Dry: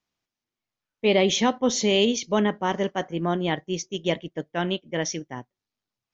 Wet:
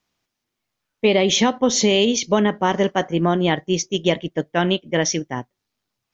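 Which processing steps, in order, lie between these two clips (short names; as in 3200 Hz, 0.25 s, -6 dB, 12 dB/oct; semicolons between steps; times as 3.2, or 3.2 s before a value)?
compressor, threshold -21 dBFS, peak gain reduction 6.5 dB; gain +8.5 dB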